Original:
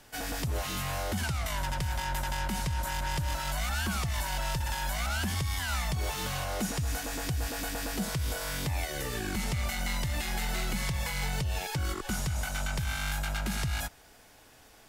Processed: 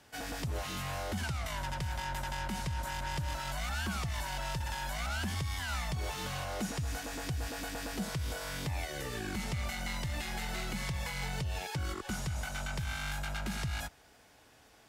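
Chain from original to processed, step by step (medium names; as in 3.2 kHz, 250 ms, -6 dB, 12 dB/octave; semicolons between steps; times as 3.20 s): high-pass 47 Hz; treble shelf 10 kHz -8.5 dB; trim -3.5 dB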